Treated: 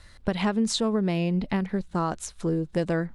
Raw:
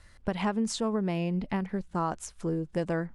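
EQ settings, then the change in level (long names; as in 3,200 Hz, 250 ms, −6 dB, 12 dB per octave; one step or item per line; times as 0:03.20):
dynamic equaliser 910 Hz, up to −4 dB, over −41 dBFS, Q 1.7
parametric band 3,900 Hz +6.5 dB 0.33 octaves
+4.5 dB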